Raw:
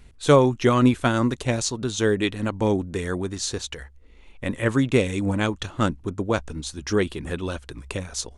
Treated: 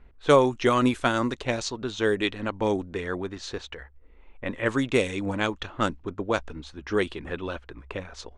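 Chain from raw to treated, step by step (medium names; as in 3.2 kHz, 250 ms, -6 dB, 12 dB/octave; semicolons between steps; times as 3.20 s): level-controlled noise filter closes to 1.5 kHz, open at -14 dBFS; peaking EQ 120 Hz -9 dB 2.4 oct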